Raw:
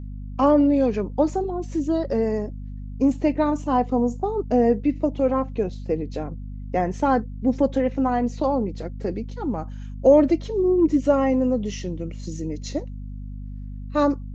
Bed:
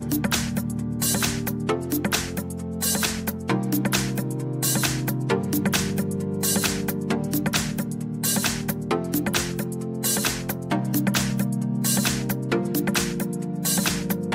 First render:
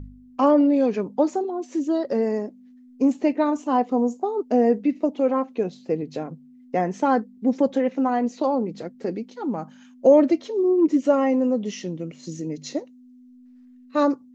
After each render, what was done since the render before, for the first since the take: de-hum 50 Hz, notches 4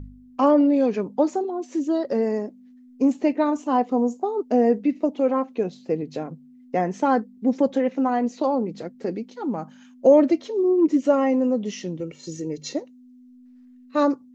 12–12.74 comb 2.2 ms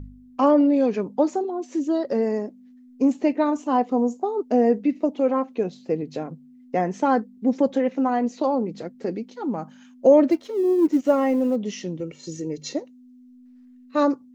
10.3–11.56 G.711 law mismatch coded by A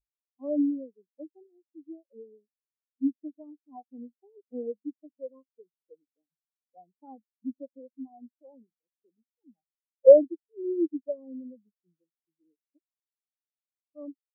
in parallel at -2 dB: compressor, threshold -29 dBFS, peak gain reduction 17.5 dB; on the sum: spectral expander 4:1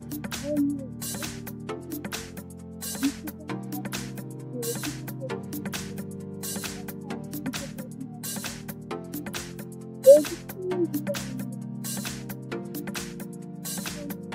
add bed -10.5 dB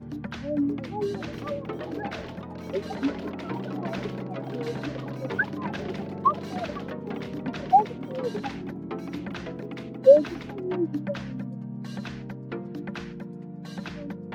echoes that change speed 0.61 s, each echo +6 st, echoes 3; air absorption 270 m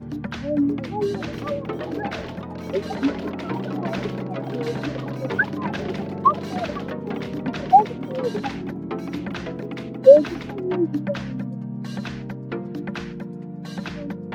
gain +5 dB; limiter -1 dBFS, peak gain reduction 1 dB

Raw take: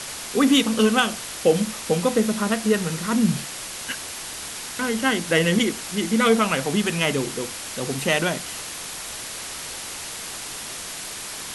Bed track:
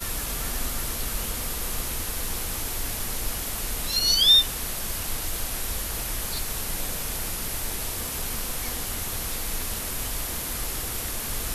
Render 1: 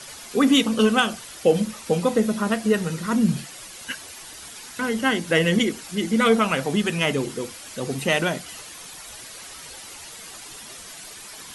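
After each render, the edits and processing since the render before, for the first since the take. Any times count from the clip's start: denoiser 10 dB, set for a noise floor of -34 dBFS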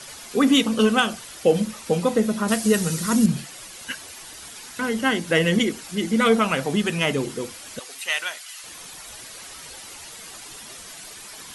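2.48–3.26 tone controls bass +3 dB, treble +11 dB; 7.79–8.64 HPF 1400 Hz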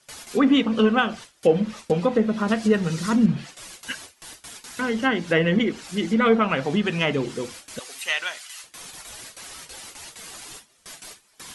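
treble ducked by the level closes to 2500 Hz, closed at -16 dBFS; gate with hold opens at -29 dBFS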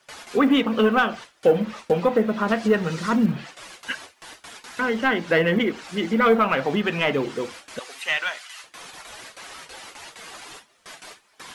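overdrive pedal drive 12 dB, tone 1600 Hz, clips at -6 dBFS; companded quantiser 8-bit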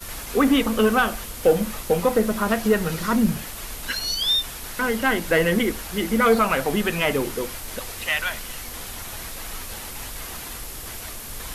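add bed track -5 dB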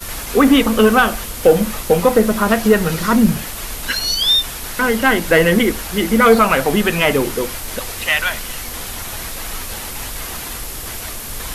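gain +7 dB; limiter -1 dBFS, peak gain reduction 1 dB

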